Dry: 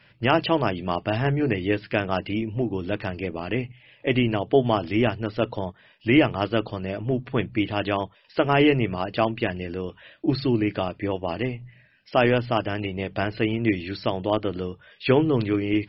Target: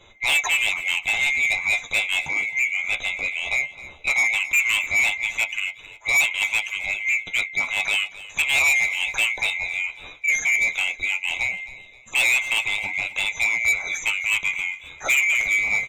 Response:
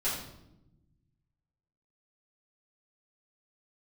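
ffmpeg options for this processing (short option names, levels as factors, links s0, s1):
-filter_complex "[0:a]afftfilt=real='real(if(lt(b,920),b+92*(1-2*mod(floor(b/92),2)),b),0)':imag='imag(if(lt(b,920),b+92*(1-2*mod(floor(b/92),2)),b),0)':win_size=2048:overlap=0.75,lowshelf=f=92:g=11.5,acrossover=split=590[s0][s1];[s0]acompressor=threshold=0.00631:ratio=10[s2];[s2][s1]amix=inputs=2:normalize=0,flanger=delay=8.6:depth=6.8:regen=43:speed=0.16:shape=triangular,asoftclip=type=tanh:threshold=0.075,asplit=2[s3][s4];[s4]aecho=0:1:264|528|792:0.141|0.0494|0.0173[s5];[s3][s5]amix=inputs=2:normalize=0,adynamicequalizer=threshold=0.0112:dfrequency=4000:dqfactor=0.7:tfrequency=4000:tqfactor=0.7:attack=5:release=100:ratio=0.375:range=1.5:mode=boostabove:tftype=highshelf,volume=2.37"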